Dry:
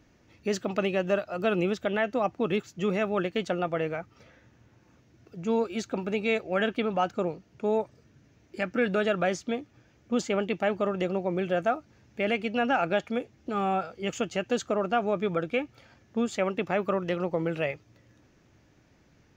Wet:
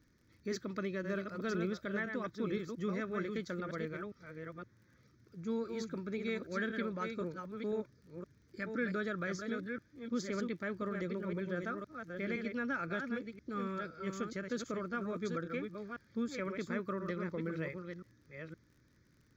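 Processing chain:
delay that plays each chunk backwards 515 ms, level −5.5 dB
phaser with its sweep stopped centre 2,800 Hz, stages 6
surface crackle 40 per second −51 dBFS
level −7 dB

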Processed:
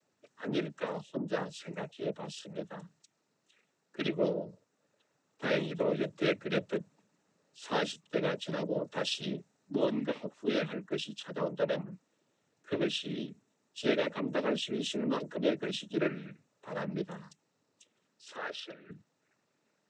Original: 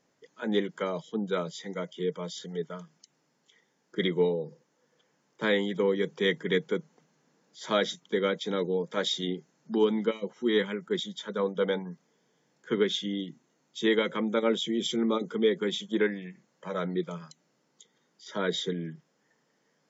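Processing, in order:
0:18.36–0:18.89: three-way crossover with the lows and the highs turned down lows −23 dB, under 540 Hz, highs −15 dB, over 3,300 Hz
cochlear-implant simulation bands 12
level −4.5 dB

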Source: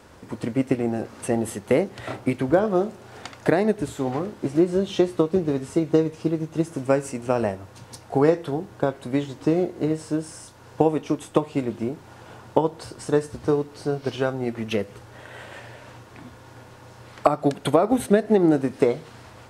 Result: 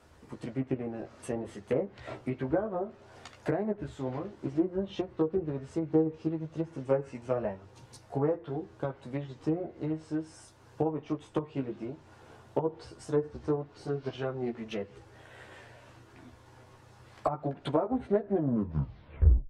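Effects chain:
turntable brake at the end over 1.28 s
treble cut that deepens with the level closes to 1,200 Hz, closed at −16 dBFS
multi-voice chorus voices 6, 0.3 Hz, delay 14 ms, depth 1.7 ms
highs frequency-modulated by the lows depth 0.5 ms
level −7 dB

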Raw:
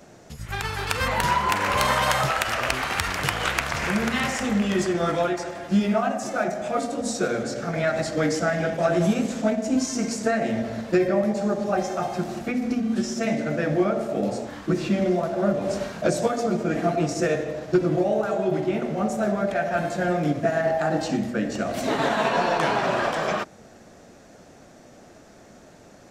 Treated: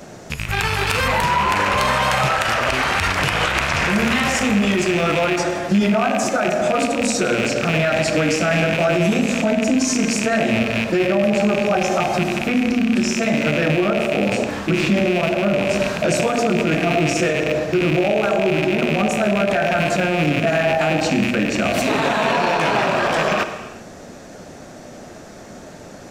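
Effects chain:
loose part that buzzes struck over −34 dBFS, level −18 dBFS
0:01.22–0:03.91: high-shelf EQ 10,000 Hz −9 dB
reverb whose tail is shaped and stops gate 420 ms falling, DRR 11 dB
boost into a limiter +19 dB
level −8.5 dB

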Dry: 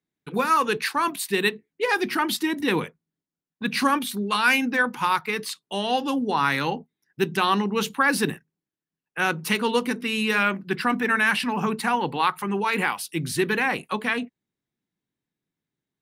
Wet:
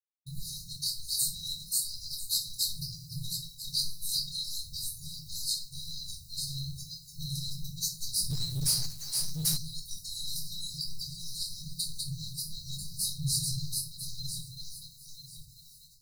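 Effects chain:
feedback delay that plays each chunk backwards 496 ms, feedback 43%, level −1.5 dB
reverb reduction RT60 2 s
in parallel at −2.5 dB: downward compressor, threshold −31 dBFS, peak gain reduction 15.5 dB
on the sum: brickwall limiter −14.5 dBFS, peak gain reduction 10.5 dB
soft clipping −18.5 dBFS, distortion −17 dB
bit reduction 9 bits
linear-phase brick-wall band-stop 150–3,800 Hz
rectangular room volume 410 cubic metres, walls furnished, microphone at 3.6 metres
0:08.30–0:09.57: power curve on the samples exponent 0.7
level −2 dB

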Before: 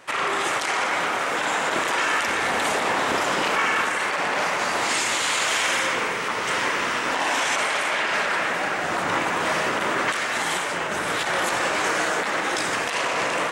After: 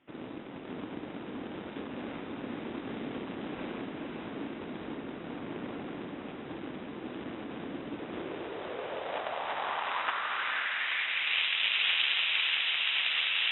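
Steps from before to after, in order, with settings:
harmonic generator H 7 −10 dB, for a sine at −9.5 dBFS
voice inversion scrambler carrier 3,800 Hz
feedback delay with all-pass diffusion 509 ms, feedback 62%, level −3 dB
band-pass filter sweep 270 Hz → 2,800 Hz, 0:07.90–0:11.48

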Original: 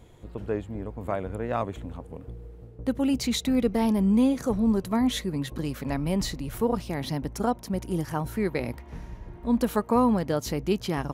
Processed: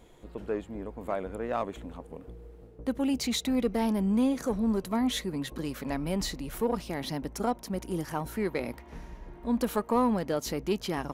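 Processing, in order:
parametric band 97 Hz −13 dB 1.1 octaves
in parallel at −6 dB: soft clipping −28 dBFS, distortion −8 dB
on the sum: level −4 dB

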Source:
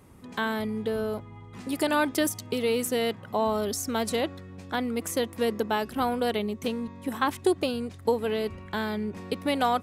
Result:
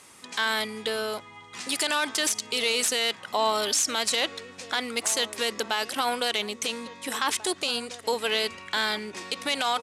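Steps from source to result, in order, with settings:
stylus tracing distortion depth 0.059 ms
meter weighting curve ITU-R 468
brickwall limiter −19.5 dBFS, peak gain reduction 11 dB
slap from a distant wall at 290 metres, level −14 dB
level +5 dB

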